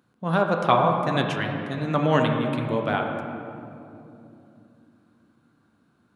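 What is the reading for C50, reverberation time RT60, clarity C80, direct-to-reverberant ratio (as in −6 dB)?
3.5 dB, 2.9 s, 5.0 dB, 2.0 dB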